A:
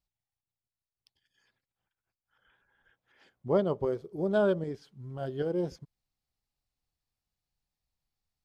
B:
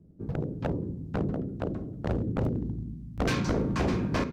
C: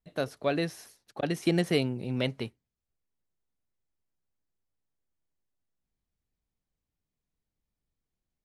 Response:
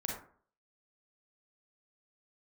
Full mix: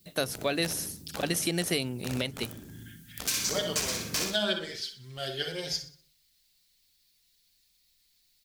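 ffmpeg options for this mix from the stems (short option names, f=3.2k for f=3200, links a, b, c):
-filter_complex "[0:a]equalizer=f=125:t=o:w=1:g=-7,equalizer=f=250:t=o:w=1:g=-10,equalizer=f=500:t=o:w=1:g=-4,equalizer=f=1k:t=o:w=1:g=-8,equalizer=f=2k:t=o:w=1:g=8,equalizer=f=4k:t=o:w=1:g=12,asplit=2[a][b];[b]adelay=5.2,afreqshift=0.38[c];[a][c]amix=inputs=2:normalize=1,volume=1dB,asplit=3[d][e][f];[e]volume=-3dB[g];[f]volume=-8.5dB[h];[1:a]crystalizer=i=10:c=0,volume=-15dB,asplit=3[i][j][k];[j]volume=-9dB[l];[k]volume=-3.5dB[m];[2:a]volume=2dB[n];[3:a]atrim=start_sample=2205[o];[g][l]amix=inputs=2:normalize=0[p];[p][o]afir=irnorm=-1:irlink=0[q];[h][m]amix=inputs=2:normalize=0,aecho=0:1:62|124|186|248|310|372:1|0.4|0.16|0.064|0.0256|0.0102[r];[d][i][n][q][r]amix=inputs=5:normalize=0,bandreject=f=50:t=h:w=6,bandreject=f=100:t=h:w=6,bandreject=f=150:t=h:w=6,crystalizer=i=5:c=0,alimiter=limit=-15.5dB:level=0:latency=1:release=362"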